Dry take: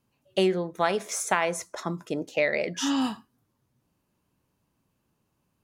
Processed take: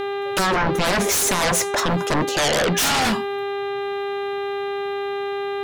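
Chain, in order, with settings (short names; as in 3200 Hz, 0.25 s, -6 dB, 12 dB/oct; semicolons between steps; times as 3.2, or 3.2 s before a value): buzz 400 Hz, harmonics 10, -45 dBFS -7 dB/oct; 0.56–1.52 low shelf 280 Hz +11 dB; limiter -18.5 dBFS, peak gain reduction 10 dB; sine folder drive 13 dB, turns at -18.5 dBFS; gain +2.5 dB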